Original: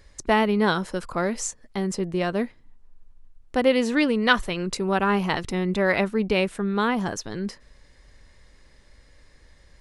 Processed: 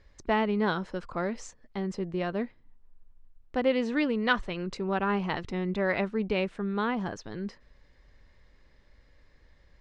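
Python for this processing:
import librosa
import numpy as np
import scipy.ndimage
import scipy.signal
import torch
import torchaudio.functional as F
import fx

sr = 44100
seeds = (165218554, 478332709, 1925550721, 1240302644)

y = fx.air_absorb(x, sr, metres=140.0)
y = F.gain(torch.from_numpy(y), -5.5).numpy()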